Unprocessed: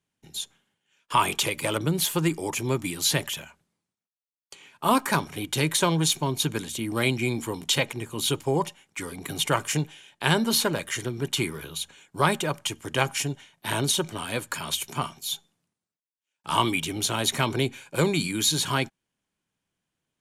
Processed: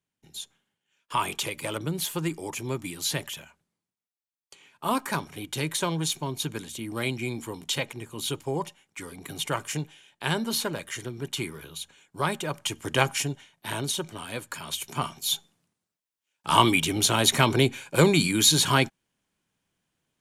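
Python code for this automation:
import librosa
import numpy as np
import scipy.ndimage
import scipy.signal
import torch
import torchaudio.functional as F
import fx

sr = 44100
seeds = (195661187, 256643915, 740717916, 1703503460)

y = fx.gain(x, sr, db=fx.line((12.38, -5.0), (12.87, 2.5), (13.82, -5.0), (14.67, -5.0), (15.3, 4.0)))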